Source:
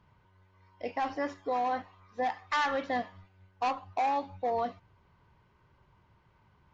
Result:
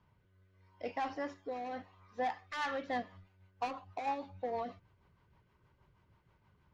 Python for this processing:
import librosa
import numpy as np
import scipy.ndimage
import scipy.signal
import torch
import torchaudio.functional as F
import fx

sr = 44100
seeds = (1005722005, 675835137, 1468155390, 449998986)

y = fx.cheby_harmonics(x, sr, harmonics=(5,), levels_db=(-28,), full_scale_db=-21.0)
y = fx.rotary_switch(y, sr, hz=0.8, then_hz=6.3, switch_at_s=2.24)
y = y * librosa.db_to_amplitude(-4.0)